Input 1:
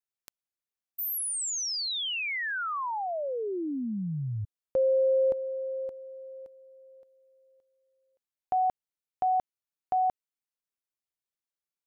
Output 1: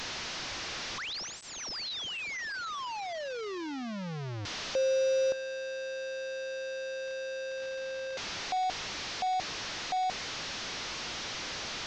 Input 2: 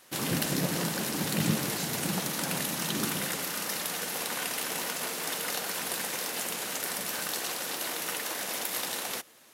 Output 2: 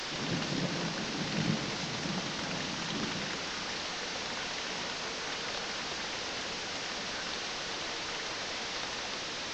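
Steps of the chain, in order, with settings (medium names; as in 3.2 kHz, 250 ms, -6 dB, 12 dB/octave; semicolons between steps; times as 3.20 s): one-bit delta coder 32 kbps, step -27 dBFS; trim -4 dB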